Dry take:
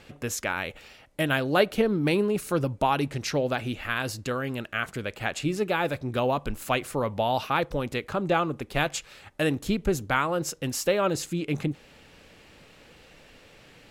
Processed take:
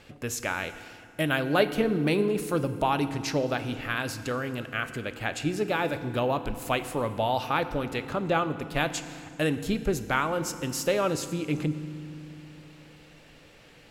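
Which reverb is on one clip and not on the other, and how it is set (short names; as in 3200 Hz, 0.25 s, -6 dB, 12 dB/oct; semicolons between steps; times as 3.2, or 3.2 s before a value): FDN reverb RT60 2.4 s, low-frequency decay 1.55×, high-frequency decay 0.75×, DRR 10.5 dB; gain -1.5 dB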